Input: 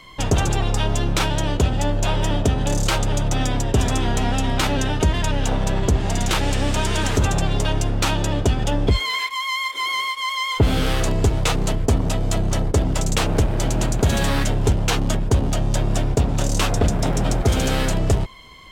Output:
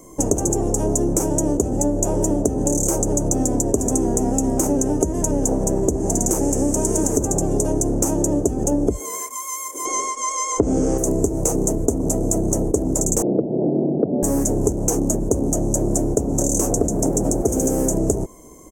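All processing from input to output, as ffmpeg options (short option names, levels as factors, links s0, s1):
-filter_complex "[0:a]asettb=1/sr,asplit=3[s0][s1][s2];[s0]atrim=end=9.854[s3];[s1]atrim=start=9.85:end=10.98,asetpts=PTS-STARTPTS,afade=t=in:d=0.004:c=qsin,afade=t=out:st=1.126:d=0.004:c=qsin,lowpass=f=7100:w=0.5412,lowpass=f=7100:w=1.3066,acontrast=72[s4];[s2]atrim=start=10.976[s5];[s3][s4]acrossfade=d=0.004:c1=hsin:c2=qsin[s6];[s6][s5]acrossfade=d=0.004:c1=qsin:c2=hsin,asettb=1/sr,asplit=3[s7][s8][s9];[s7]atrim=end=13.224[s10];[s8]atrim=start=13.22:end=14.23,asetpts=PTS-STARTPTS,afade=t=in:d=0.004:c=qsin,afade=t=out:st=1.006:d=0.004:c=qsin,afreqshift=26,asuperpass=centerf=320:order=8:qfactor=0.53[s11];[s9]atrim=start=14.226[s12];[s10][s11]acrossfade=d=0.004:c1=hsin:c2=qsin[s13];[s13][s12]acrossfade=d=0.004:c1=qsin:c2=hsin,firequalizer=gain_entry='entry(110,0);entry(310,15);entry(1300,-10);entry(3800,-28);entry(6300,15);entry(13000,13)':delay=0.05:min_phase=1,acompressor=threshold=0.2:ratio=6,volume=0.841"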